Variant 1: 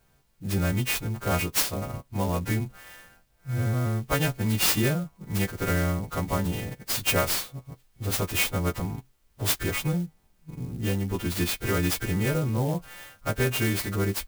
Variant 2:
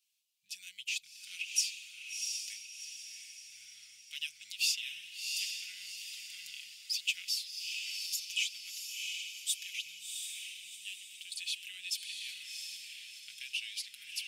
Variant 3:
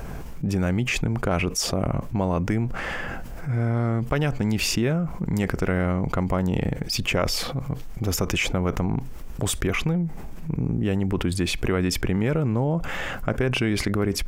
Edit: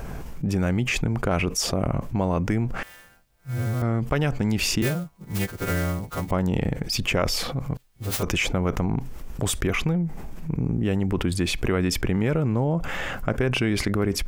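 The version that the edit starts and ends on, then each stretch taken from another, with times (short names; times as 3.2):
3
2.83–3.82 from 1
4.82–6.31 from 1
7.77–8.23 from 1
not used: 2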